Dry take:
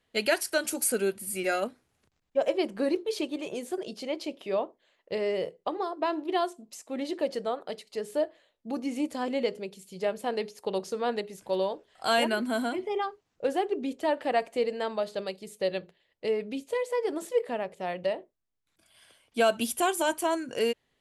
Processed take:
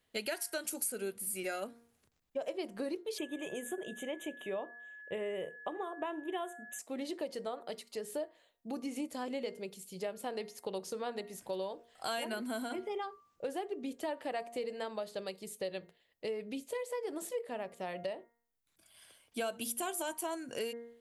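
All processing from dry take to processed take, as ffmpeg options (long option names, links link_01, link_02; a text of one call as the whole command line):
ffmpeg -i in.wav -filter_complex "[0:a]asettb=1/sr,asplit=3[link_01][link_02][link_03];[link_01]atrim=end=3.184[link_04];[link_02]atrim=start=3.18:end=6.79,asetpts=PTS-STARTPTS,afade=type=in:duration=0.004:curve=qsin,afade=type=out:start_time=3.606:duration=0.004:curve=qsin,asuperstop=centerf=4800:order=12:qfactor=1.9,aeval=exprs='val(0)+0.00562*sin(2*PI*1700*n/s)':channel_layout=same[link_05];[link_03]atrim=start=6.786[link_06];[link_04][link_05]acrossfade=duration=0.004:curve1=hsin:curve2=qsin[link_07];[link_07][link_06]acrossfade=duration=0.004:curve1=qsin:curve2=hsin,highshelf=frequency=9200:gain=11.5,bandreject=frequency=234.2:width_type=h:width=4,bandreject=frequency=468.4:width_type=h:width=4,bandreject=frequency=702.6:width_type=h:width=4,bandreject=frequency=936.8:width_type=h:width=4,bandreject=frequency=1171:width_type=h:width=4,bandreject=frequency=1405.2:width_type=h:width=4,bandreject=frequency=1639.4:width_type=h:width=4,bandreject=frequency=1873.6:width_type=h:width=4,bandreject=frequency=2107.8:width_type=h:width=4,acompressor=threshold=-33dB:ratio=3,volume=-3.5dB" out.wav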